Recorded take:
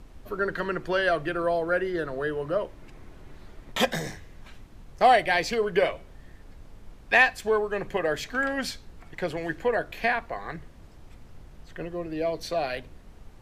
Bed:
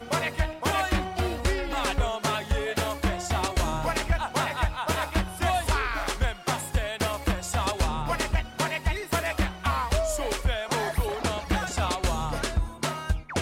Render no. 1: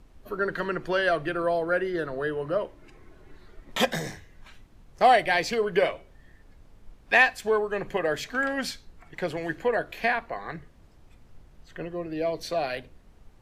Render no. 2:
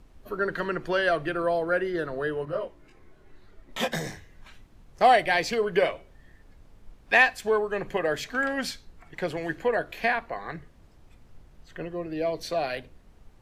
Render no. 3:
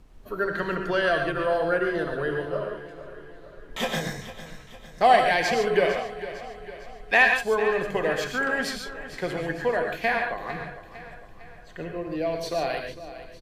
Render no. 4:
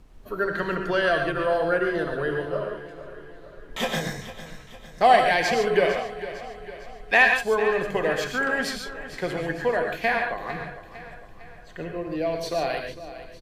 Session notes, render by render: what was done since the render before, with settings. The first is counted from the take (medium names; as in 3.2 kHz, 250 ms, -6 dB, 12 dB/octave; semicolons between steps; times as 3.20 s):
noise print and reduce 6 dB
2.45–3.93 s: detune thickener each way 16 cents
feedback delay 454 ms, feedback 52%, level -14 dB; gated-style reverb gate 160 ms rising, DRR 3.5 dB
trim +1 dB